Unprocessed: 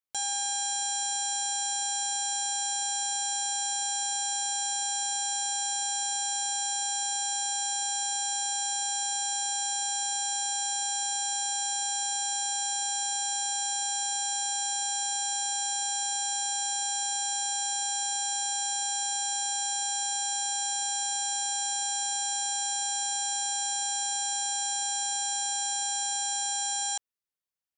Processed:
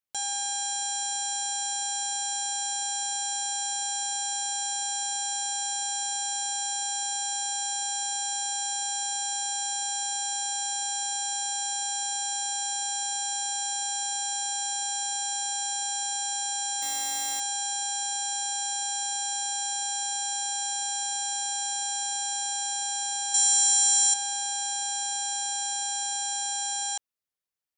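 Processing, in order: 16.82–17.40 s: companded quantiser 4-bit; 23.34–24.14 s: peaking EQ 7.9 kHz +11 dB 1.9 oct

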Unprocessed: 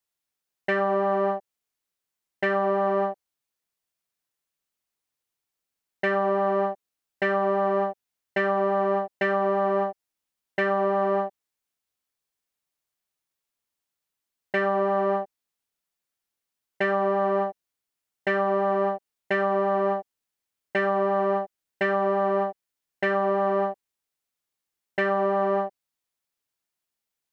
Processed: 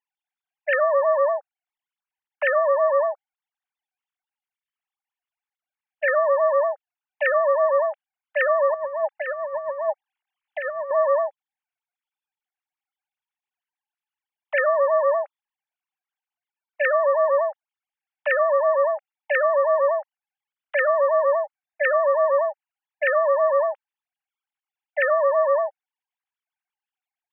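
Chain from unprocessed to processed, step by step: formants replaced by sine waves; 8.74–10.91 s: compressor with a negative ratio -29 dBFS, ratio -0.5; trim +4 dB

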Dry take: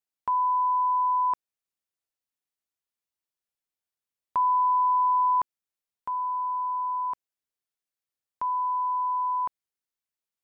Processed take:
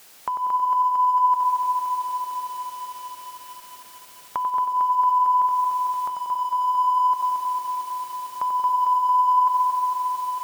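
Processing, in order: jump at every zero crossing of -47 dBFS; bass shelf 260 Hz -7.5 dB; compression 8:1, threshold -31 dBFS, peak gain reduction 9.5 dB; on a send: tape echo 93 ms, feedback 85%, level -4 dB, low-pass 1.2 kHz; on the sum: bit-crushed delay 226 ms, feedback 80%, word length 10-bit, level -5.5 dB; trim +6.5 dB

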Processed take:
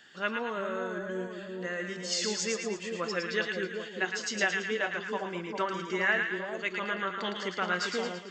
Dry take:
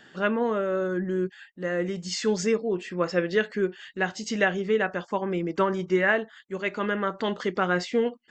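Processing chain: tilt shelf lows -6.5 dB, about 1.2 kHz; two-band feedback delay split 1 kHz, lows 398 ms, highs 111 ms, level -4 dB; trim -5.5 dB

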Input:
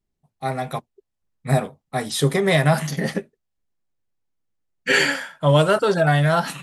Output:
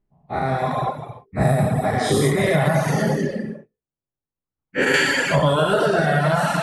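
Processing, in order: every event in the spectrogram widened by 240 ms; level-controlled noise filter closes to 2.9 kHz, open at -8.5 dBFS; peaking EQ 4.5 kHz -7.5 dB 2.1 oct, from 3.11 s -14.5 dB, from 4.94 s -3.5 dB; gated-style reverb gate 350 ms flat, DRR 2 dB; compression 6:1, threshold -12 dBFS, peak gain reduction 7 dB; reverb removal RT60 1.1 s

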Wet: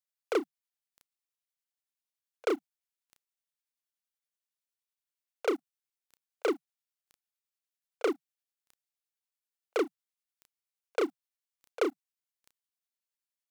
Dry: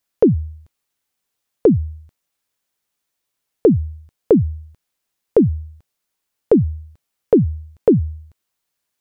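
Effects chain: steep high-pass 520 Hz 36 dB/octave; peaking EQ 690 Hz -7.5 dB 2.1 oct; waveshaping leveller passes 5; granular stretch 1.5×, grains 189 ms; trim -5.5 dB

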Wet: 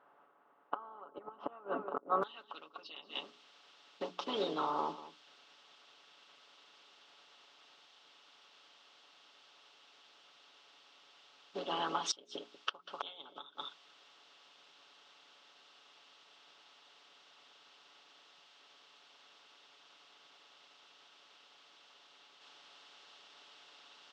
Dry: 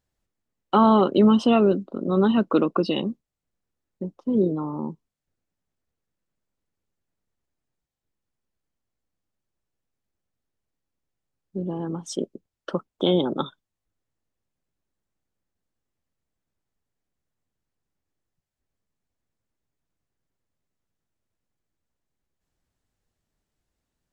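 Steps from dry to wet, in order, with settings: spectral levelling over time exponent 0.6; low-pass 1.4 kHz 24 dB/octave, from 2.23 s 4.1 kHz; differentiator; hum notches 60/120/180/240/300/360/420 Hz; delay 191 ms -15 dB; harmonic-percussive split harmonic -5 dB; inverted gate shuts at -34 dBFS, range -26 dB; bass shelf 250 Hz -10.5 dB; comb 7 ms, depth 54%; trim +14.5 dB

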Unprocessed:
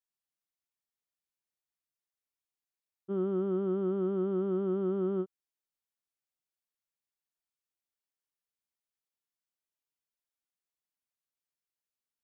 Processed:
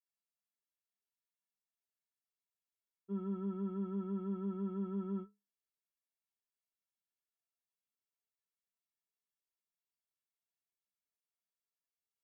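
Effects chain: Chebyshev shaper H 2 -27 dB, 4 -36 dB, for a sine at -22.5 dBFS; inharmonic resonator 200 Hz, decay 0.26 s, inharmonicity 0.03; trim +3.5 dB

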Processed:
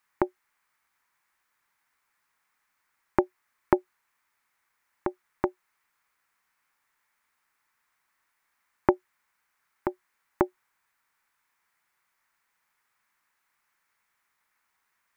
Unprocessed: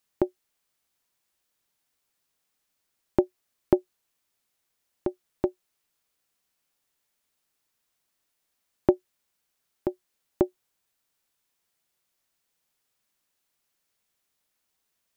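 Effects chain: high-order bell 1.4 kHz +13.5 dB; trim -2 dB

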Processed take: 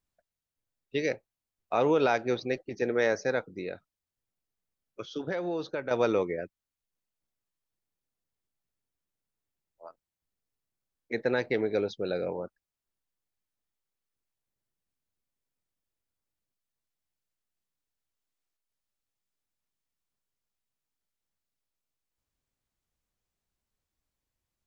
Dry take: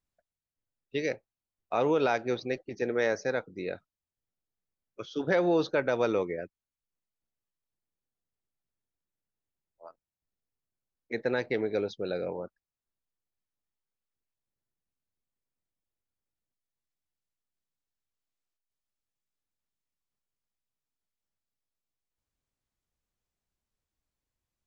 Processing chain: 3.48–5.91 s: compression 2.5:1, threshold -35 dBFS, peak gain reduction 9.5 dB; trim +1.5 dB

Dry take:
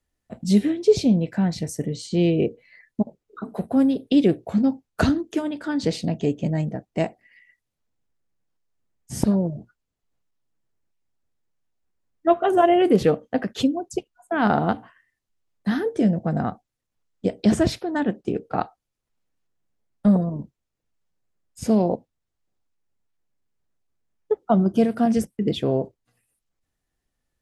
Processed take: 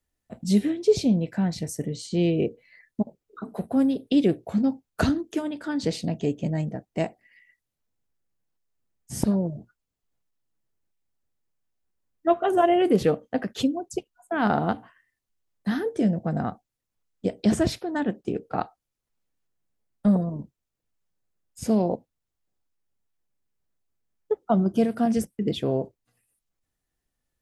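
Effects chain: treble shelf 9.2 kHz +5.5 dB; trim -3 dB

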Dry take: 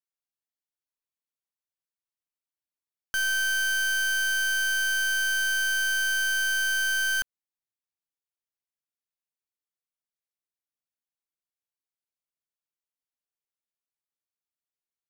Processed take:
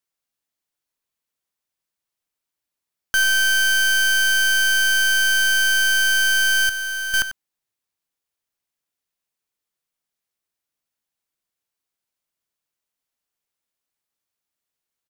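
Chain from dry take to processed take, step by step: echo from a far wall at 16 m, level -12 dB; 6.69–7.14 s: overload inside the chain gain 35 dB; trim +9 dB

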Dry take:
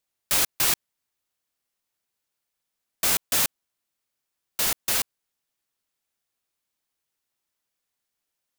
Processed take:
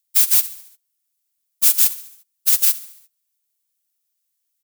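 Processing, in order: pre-emphasis filter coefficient 0.9; on a send: frequency-shifting echo 130 ms, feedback 55%, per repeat -50 Hz, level -16.5 dB; on the sum: plain phase-vocoder stretch 0.54×; loudness maximiser +17 dB; upward expansion 1.5:1, over -24 dBFS; trim -1 dB

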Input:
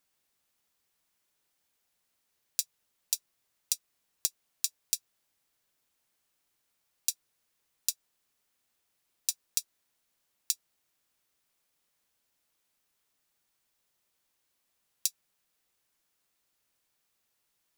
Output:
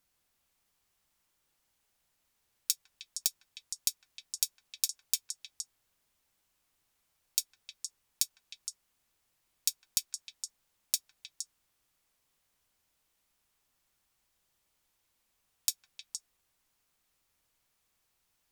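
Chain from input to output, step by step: bass shelf 110 Hz +12 dB; on a send: repeats whose band climbs or falls 149 ms, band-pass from 1 kHz, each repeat 1.4 oct, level -1.5 dB; on the sum: speed mistake 25 fps video run at 24 fps

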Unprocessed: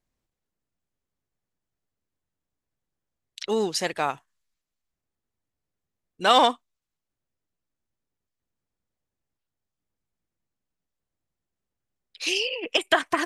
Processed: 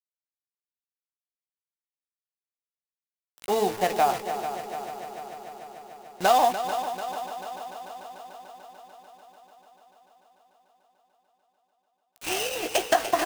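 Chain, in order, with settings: dead-time distortion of 0.12 ms; peaking EQ 730 Hz +14 dB 0.41 oct; de-hum 110.6 Hz, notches 16; compression 4:1, threshold -19 dBFS, peak gain reduction 11 dB; bit crusher 6-bit; doubling 16 ms -10 dB; multi-head delay 147 ms, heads second and third, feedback 69%, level -11 dB

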